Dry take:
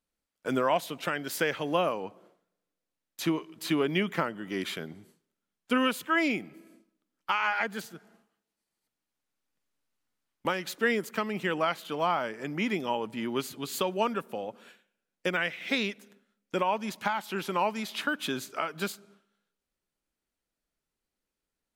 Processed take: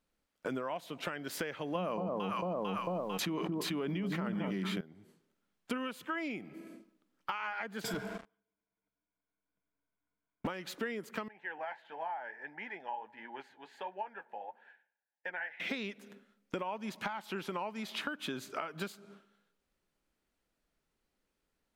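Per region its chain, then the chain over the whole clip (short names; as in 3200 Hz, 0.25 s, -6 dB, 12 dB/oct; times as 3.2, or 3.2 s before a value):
1.75–4.81 bell 190 Hz +13.5 dB 0.25 oct + echo with dull and thin repeats by turns 0.224 s, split 1000 Hz, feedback 51%, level -6 dB + fast leveller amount 100%
7.84–10.47 low-pass opened by the level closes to 2000 Hz, open at -47 dBFS + ripple EQ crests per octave 1.7, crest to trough 12 dB + sample leveller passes 5
11.28–15.6 double band-pass 1200 Hz, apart 0.97 oct + flange 1.5 Hz, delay 4 ms, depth 7.9 ms, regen -49%
whole clip: high shelf 4600 Hz -8 dB; compressor 6:1, threshold -42 dBFS; gain +6 dB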